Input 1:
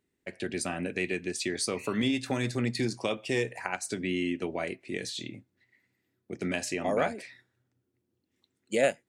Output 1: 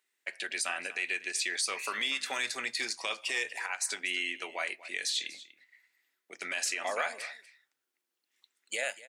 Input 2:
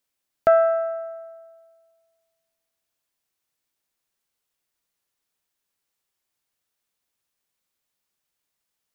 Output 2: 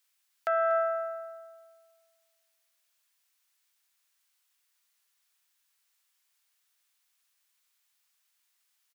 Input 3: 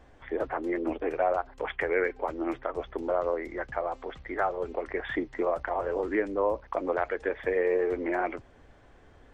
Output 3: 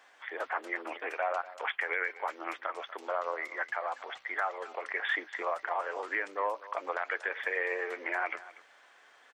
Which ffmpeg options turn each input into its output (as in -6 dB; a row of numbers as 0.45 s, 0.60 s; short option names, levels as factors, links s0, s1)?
-af "highpass=1200,alimiter=level_in=1.26:limit=0.0631:level=0:latency=1:release=66,volume=0.794,aecho=1:1:241:0.133,volume=2"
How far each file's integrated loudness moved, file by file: -1.5 LU, -8.5 LU, -4.0 LU